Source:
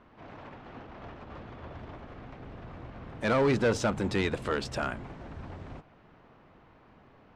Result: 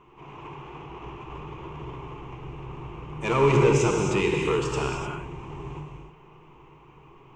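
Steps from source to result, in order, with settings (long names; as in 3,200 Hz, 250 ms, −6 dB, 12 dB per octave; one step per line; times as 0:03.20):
EQ curve with evenly spaced ripples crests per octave 0.71, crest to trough 15 dB
reverb whose tail is shaped and stops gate 330 ms flat, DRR −0.5 dB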